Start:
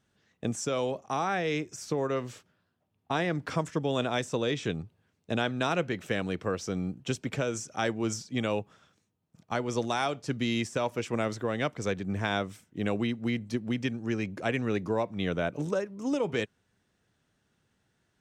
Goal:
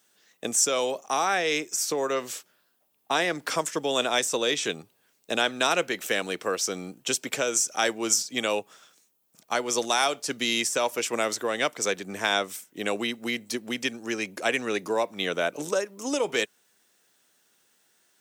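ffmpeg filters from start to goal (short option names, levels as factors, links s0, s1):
-af "highpass=360,aemphasis=mode=production:type=75fm,volume=1.78"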